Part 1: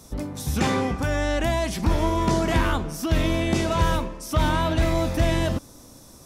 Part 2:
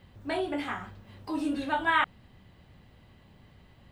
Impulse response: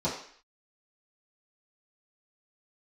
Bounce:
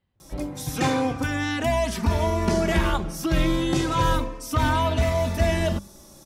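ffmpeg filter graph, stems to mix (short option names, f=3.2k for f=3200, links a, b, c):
-filter_complex "[0:a]bandreject=f=50:t=h:w=6,bandreject=f=100:t=h:w=6,bandreject=f=150:t=h:w=6,bandreject=f=200:t=h:w=6,asplit=2[a][b];[b]adelay=3.2,afreqshift=-0.32[c];[a][c]amix=inputs=2:normalize=1,adelay=200,volume=3dB[d];[1:a]volume=-20dB[e];[d][e]amix=inputs=2:normalize=0"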